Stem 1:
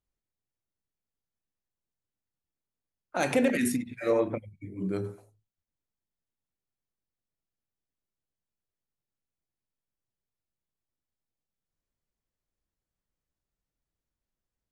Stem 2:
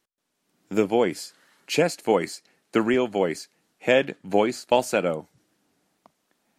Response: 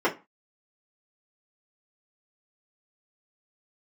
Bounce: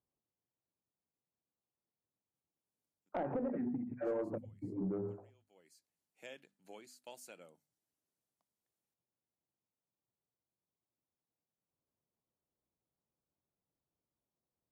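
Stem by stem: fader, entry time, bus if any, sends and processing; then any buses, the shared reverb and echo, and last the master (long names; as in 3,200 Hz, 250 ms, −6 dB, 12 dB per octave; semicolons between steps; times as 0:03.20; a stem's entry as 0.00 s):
+1.5 dB, 0.00 s, no send, de-essing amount 90%; low-pass filter 1,100 Hz 24 dB per octave; downward compressor 8 to 1, threshold −33 dBFS, peak gain reduction 13 dB
−19.5 dB, 2.35 s, muted 0:03.09–0:03.94, no send, first-order pre-emphasis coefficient 0.8; automatic ducking −21 dB, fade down 0.25 s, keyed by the first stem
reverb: not used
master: high-pass filter 110 Hz 12 dB per octave; mains-hum notches 50/100/150/200/250 Hz; soft clipping −29 dBFS, distortion −16 dB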